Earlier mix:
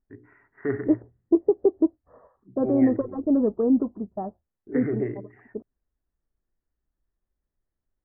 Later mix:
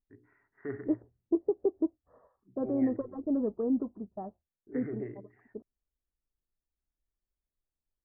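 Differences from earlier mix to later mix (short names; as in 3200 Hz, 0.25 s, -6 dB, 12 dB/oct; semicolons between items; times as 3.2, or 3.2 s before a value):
first voice -11.0 dB; second voice -8.5 dB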